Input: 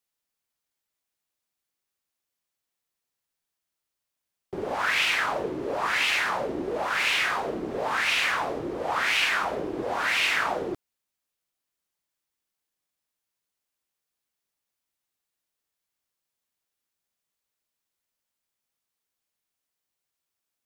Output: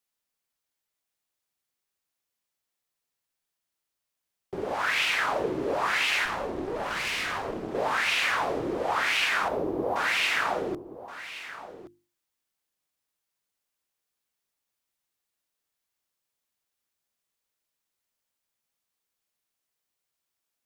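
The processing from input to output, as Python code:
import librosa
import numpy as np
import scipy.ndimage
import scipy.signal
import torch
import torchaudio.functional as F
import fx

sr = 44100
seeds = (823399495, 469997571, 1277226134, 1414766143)

p1 = fx.band_shelf(x, sr, hz=3700.0, db=-15.5, octaves=2.9, at=(9.48, 9.96))
p2 = fx.hum_notches(p1, sr, base_hz=50, count=7)
p3 = fx.rider(p2, sr, range_db=3, speed_s=0.5)
p4 = fx.tube_stage(p3, sr, drive_db=25.0, bias=0.8, at=(6.25, 7.75))
y = p4 + fx.echo_single(p4, sr, ms=1123, db=-14.0, dry=0)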